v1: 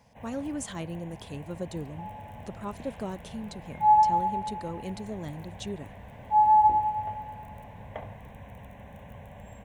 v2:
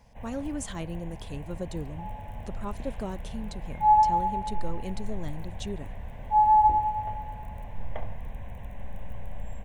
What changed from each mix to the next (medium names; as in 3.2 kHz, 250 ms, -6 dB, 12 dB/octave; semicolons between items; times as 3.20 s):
master: remove high-pass 98 Hz 12 dB/octave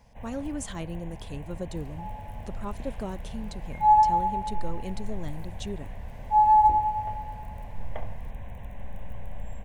second sound: remove low-pass 1.6 kHz 6 dB/octave